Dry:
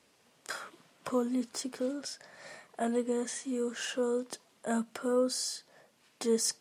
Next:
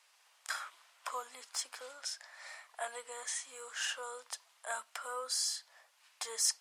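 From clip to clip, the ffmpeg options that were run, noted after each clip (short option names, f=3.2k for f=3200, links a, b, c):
-af "highpass=f=820:w=0.5412,highpass=f=820:w=1.3066,volume=1dB"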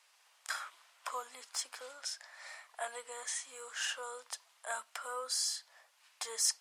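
-af anull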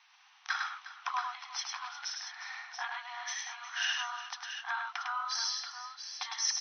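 -af "afftfilt=real='re*between(b*sr/4096,710,6200)':imag='im*between(b*sr/4096,710,6200)':win_size=4096:overlap=0.75,equalizer=f=4.9k:w=6:g=-7.5,aecho=1:1:103|358|681:0.631|0.188|0.355,volume=5.5dB"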